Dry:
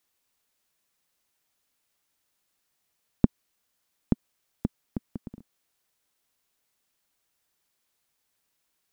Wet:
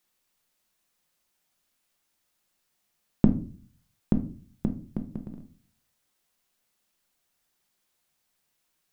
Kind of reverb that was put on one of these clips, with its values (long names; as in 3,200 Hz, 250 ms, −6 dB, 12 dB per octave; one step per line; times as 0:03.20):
rectangular room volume 270 cubic metres, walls furnished, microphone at 0.93 metres